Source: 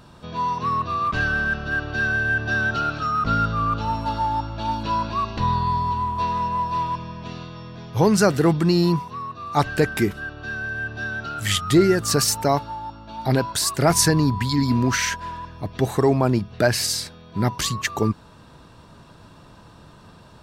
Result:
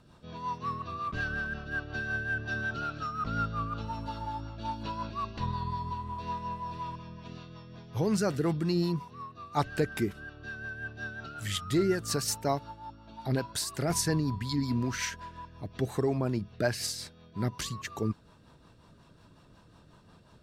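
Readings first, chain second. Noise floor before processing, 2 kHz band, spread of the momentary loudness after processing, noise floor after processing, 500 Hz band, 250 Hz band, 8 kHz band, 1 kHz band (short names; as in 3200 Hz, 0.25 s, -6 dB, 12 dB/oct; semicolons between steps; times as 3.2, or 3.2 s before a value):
-48 dBFS, -11.5 dB, 14 LU, -58 dBFS, -10.5 dB, -10.0 dB, -11.5 dB, -12.5 dB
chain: rotary speaker horn 5.5 Hz; gain -8.5 dB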